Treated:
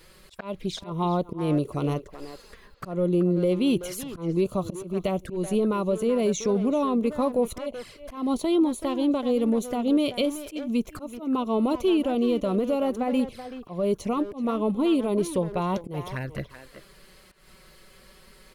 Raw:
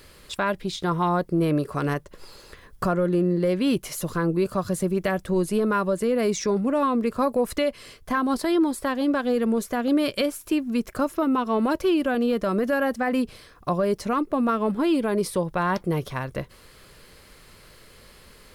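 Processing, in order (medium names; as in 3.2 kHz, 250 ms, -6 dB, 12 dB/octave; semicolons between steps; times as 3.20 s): touch-sensitive flanger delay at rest 6.7 ms, full sweep at -23.5 dBFS; slow attack 177 ms; speakerphone echo 380 ms, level -10 dB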